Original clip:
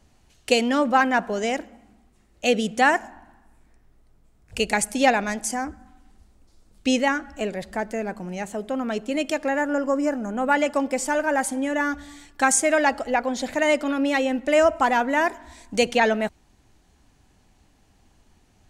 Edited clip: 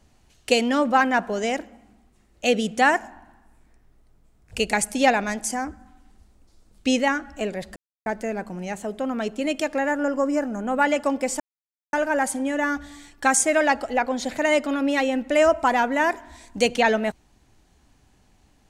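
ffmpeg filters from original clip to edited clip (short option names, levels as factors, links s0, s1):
-filter_complex "[0:a]asplit=3[s0][s1][s2];[s0]atrim=end=7.76,asetpts=PTS-STARTPTS,afade=t=out:st=7.756:d=0.004:c=hsin,apad=pad_dur=0.3[s3];[s1]atrim=start=7.76:end=11.1,asetpts=PTS-STARTPTS,afade=t=in:d=0.004:c=hsin,afade=t=out:st=3.336:d=0.004:c=hsin,apad=pad_dur=0.53[s4];[s2]atrim=start=11.1,asetpts=PTS-STARTPTS,afade=t=in:d=0.004:c=hsin[s5];[s3][s4][s5]concat=n=3:v=0:a=1"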